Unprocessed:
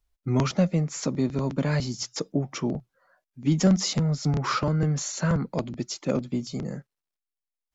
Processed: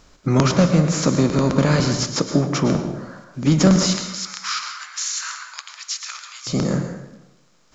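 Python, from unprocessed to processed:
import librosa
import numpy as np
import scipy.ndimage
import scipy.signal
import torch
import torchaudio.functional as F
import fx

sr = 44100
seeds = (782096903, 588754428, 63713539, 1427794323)

y = fx.bin_compress(x, sr, power=0.6)
y = fx.bessel_highpass(y, sr, hz=2000.0, order=8, at=(3.86, 6.47))
y = fx.rev_plate(y, sr, seeds[0], rt60_s=0.9, hf_ratio=0.7, predelay_ms=95, drr_db=6.0)
y = y * librosa.db_to_amplitude(4.5)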